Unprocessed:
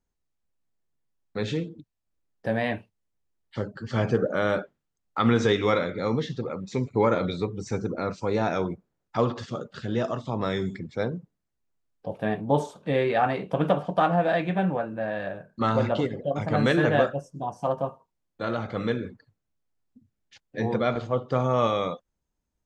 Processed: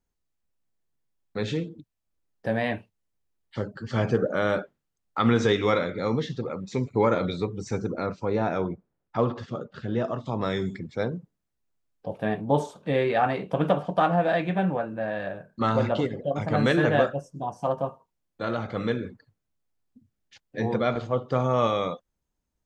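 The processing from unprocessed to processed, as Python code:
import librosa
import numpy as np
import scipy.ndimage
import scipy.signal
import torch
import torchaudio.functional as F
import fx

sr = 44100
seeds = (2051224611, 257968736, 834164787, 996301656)

y = fx.lowpass(x, sr, hz=2000.0, slope=6, at=(8.06, 10.26))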